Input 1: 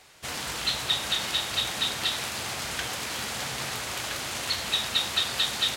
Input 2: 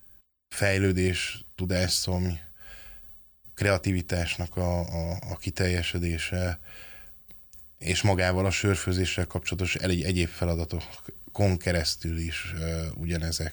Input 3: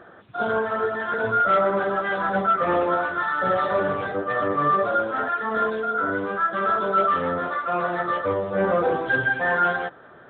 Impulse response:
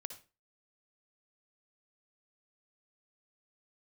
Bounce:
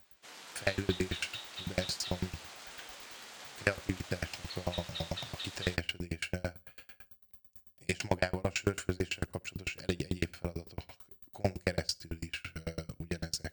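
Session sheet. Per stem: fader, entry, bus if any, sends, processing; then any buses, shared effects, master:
−12.0 dB, 0.00 s, no send, high-pass filter 260 Hz 12 dB per octave; flanger 0.46 Hz, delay 7.3 ms, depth 9.2 ms, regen +73%
0.0 dB, 0.00 s, send −16 dB, low-shelf EQ 65 Hz −9.5 dB; tremolo with a ramp in dB decaying 9 Hz, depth 36 dB
muted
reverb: on, RT60 0.30 s, pre-delay 52 ms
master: parametric band 11,000 Hz −6.5 dB 0.46 octaves; highs frequency-modulated by the lows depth 0.23 ms

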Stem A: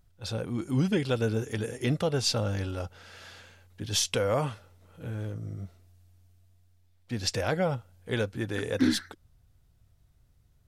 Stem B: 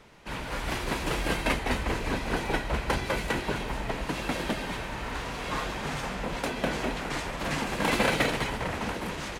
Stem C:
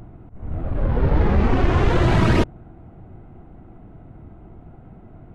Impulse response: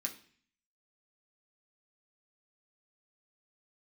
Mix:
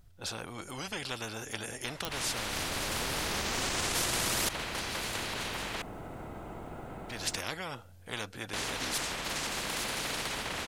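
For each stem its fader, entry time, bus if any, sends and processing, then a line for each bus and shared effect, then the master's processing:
−11.0 dB, 0.00 s, no send, no processing
−10.0 dB, 1.85 s, muted 0:05.82–0:08.53, no send, brickwall limiter −21.5 dBFS, peak gain reduction 10 dB
−5.0 dB, 2.05 s, no send, bass and treble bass +1 dB, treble +14 dB; brickwall limiter −11.5 dBFS, peak gain reduction 6 dB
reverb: not used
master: every bin compressed towards the loudest bin 4 to 1

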